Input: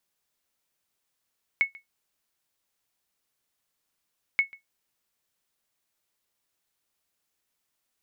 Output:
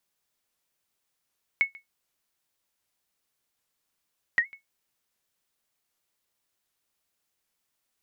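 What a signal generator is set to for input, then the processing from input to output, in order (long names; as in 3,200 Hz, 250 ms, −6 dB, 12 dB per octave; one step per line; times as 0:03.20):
ping with an echo 2,200 Hz, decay 0.14 s, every 2.78 s, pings 2, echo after 0.14 s, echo −23.5 dB −13.5 dBFS
wow of a warped record 78 rpm, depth 250 cents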